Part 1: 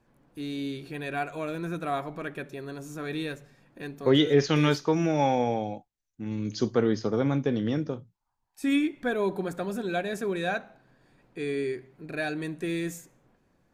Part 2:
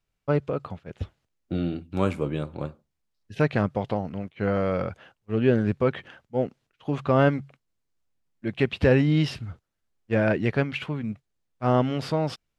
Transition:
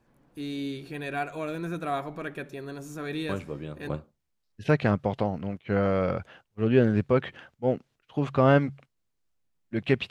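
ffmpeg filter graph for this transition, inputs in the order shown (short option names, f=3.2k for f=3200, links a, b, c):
-filter_complex "[1:a]asplit=2[a][b];[0:a]apad=whole_dur=10.1,atrim=end=10.1,atrim=end=3.892[c];[b]atrim=start=2.598:end=8.81[d];[a]atrim=start=2:end=2.6,asetpts=PTS-STARTPTS,volume=-8.5dB,afade=t=in:d=0.004:c=hsin,afade=t=out:st=0.596:d=0.004:c=hsin,adelay=145089S[e];[c][d]acrossfade=d=0.004:c1=hsin:c2=hsin[f];[f][e]amix=inputs=2:normalize=0"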